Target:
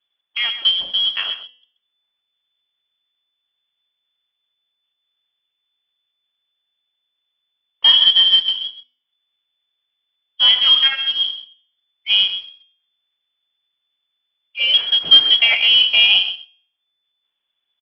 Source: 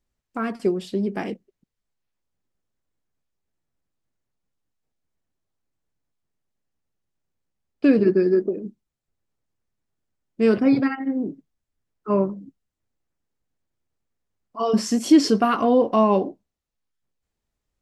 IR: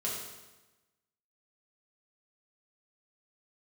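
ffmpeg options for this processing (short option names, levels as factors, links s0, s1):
-filter_complex "[0:a]lowpass=f=3000:t=q:w=0.5098,lowpass=f=3000:t=q:w=0.6013,lowpass=f=3000:t=q:w=0.9,lowpass=f=3000:t=q:w=2.563,afreqshift=-3500,highshelf=f=2500:g=-3.5,acontrast=41,aresample=11025,acrusher=bits=6:mode=log:mix=0:aa=0.000001,aresample=44100,bandreject=f=248.8:t=h:w=4,bandreject=f=497.6:t=h:w=4,bandreject=f=746.4:t=h:w=4,bandreject=f=995.2:t=h:w=4,bandreject=f=1244:t=h:w=4,bandreject=f=1492.8:t=h:w=4,bandreject=f=1741.6:t=h:w=4,bandreject=f=1990.4:t=h:w=4,bandreject=f=2239.2:t=h:w=4,bandreject=f=2488:t=h:w=4,bandreject=f=2736.8:t=h:w=4,bandreject=f=2985.6:t=h:w=4,bandreject=f=3234.4:t=h:w=4,bandreject=f=3483.2:t=h:w=4,bandreject=f=3732:t=h:w=4,bandreject=f=3980.8:t=h:w=4,bandreject=f=4229.6:t=h:w=4,bandreject=f=4478.4:t=h:w=4,bandreject=f=4727.2:t=h:w=4,bandreject=f=4976:t=h:w=4,bandreject=f=5224.8:t=h:w=4,bandreject=f=5473.6:t=h:w=4,bandreject=f=5722.4:t=h:w=4,bandreject=f=5971.2:t=h:w=4,bandreject=f=6220:t=h:w=4,bandreject=f=6468.8:t=h:w=4,bandreject=f=6717.6:t=h:w=4,bandreject=f=6966.4:t=h:w=4,bandreject=f=7215.2:t=h:w=4,bandreject=f=7464:t=h:w=4,bandreject=f=7712.8:t=h:w=4,bandreject=f=7961.6:t=h:w=4,bandreject=f=8210.4:t=h:w=4,bandreject=f=8459.2:t=h:w=4,bandreject=f=8708:t=h:w=4,bandreject=f=8956.8:t=h:w=4,asplit=2[s0][s1];[s1]aecho=0:1:129:0.251[s2];[s0][s2]amix=inputs=2:normalize=0,volume=1.19"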